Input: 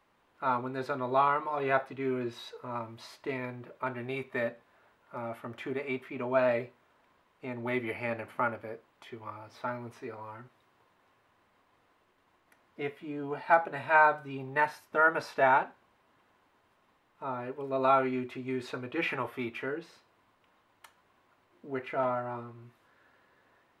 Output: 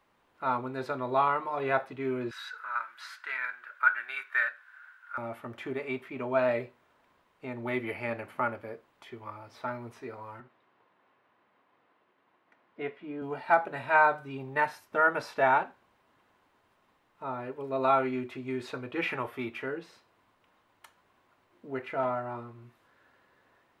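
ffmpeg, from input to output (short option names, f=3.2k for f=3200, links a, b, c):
-filter_complex "[0:a]asettb=1/sr,asplit=3[a][b][c];[a]atrim=end=2.314[d];[b]atrim=start=2.31:end=5.18,asetpts=PTS-STARTPTS,afade=t=in:d=0.004:c=qsin,afade=t=out:st=2.866:d=0.004:c=qsin,highpass=f=1.5k:t=q:w=12[e];[c]atrim=start=5.176[f];[d][e]acrossfade=d=0.004:c1=hsin:c2=qsin[g];[g][f]acrossfade=d=0.004:c1=qsin:c2=hsin,asettb=1/sr,asplit=3[h][i][j];[h]atrim=end=10.404[k];[i]atrim=start=10.4:end=13.22,asetpts=PTS-STARTPTS,afade=t=in:d=0.004:c=qsin,afade=t=out:st=2.816:d=0.004:c=qsin,highpass=170,lowpass=3.1k[l];[j]atrim=start=13.216[m];[k][l]acrossfade=d=0.004:c1=hsin:c2=qsin[n];[n][m]acrossfade=d=0.004:c1=qsin:c2=hsin"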